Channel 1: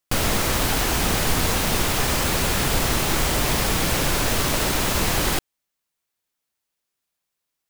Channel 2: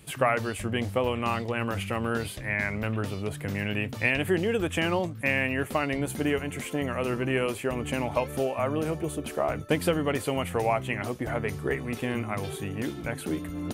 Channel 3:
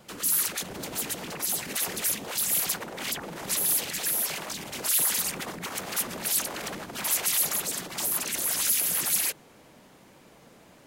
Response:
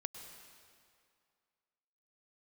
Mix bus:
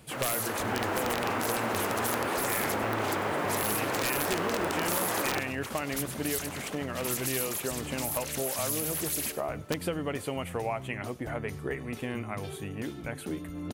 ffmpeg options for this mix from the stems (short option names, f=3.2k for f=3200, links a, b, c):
-filter_complex "[0:a]highpass=150,acrossover=split=230 2100:gain=0.0708 1 0.0708[a][b][c];[a][b][c]amix=inputs=3:normalize=0,dynaudnorm=f=420:g=3:m=11dB,volume=-10.5dB,asplit=2[d][e];[e]volume=-11.5dB[f];[1:a]volume=-4dB,asplit=2[g][h];[h]volume=-24dB[i];[2:a]volume=-5dB,asplit=2[j][k];[k]volume=-15.5dB[l];[f][i][l]amix=inputs=3:normalize=0,aecho=0:1:98|196|294|392:1|0.26|0.0676|0.0176[m];[d][g][j][m]amix=inputs=4:normalize=0,aeval=exprs='(mod(5.96*val(0)+1,2)-1)/5.96':c=same,acompressor=threshold=-29dB:ratio=2"